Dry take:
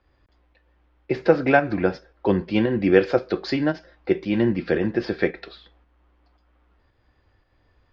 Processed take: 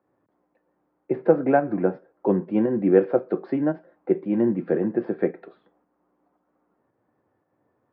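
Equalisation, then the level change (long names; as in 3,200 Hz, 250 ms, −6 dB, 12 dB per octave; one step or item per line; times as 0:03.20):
high-pass filter 150 Hz 24 dB per octave
low-pass filter 1,000 Hz 12 dB per octave
high-frequency loss of the air 130 metres
0.0 dB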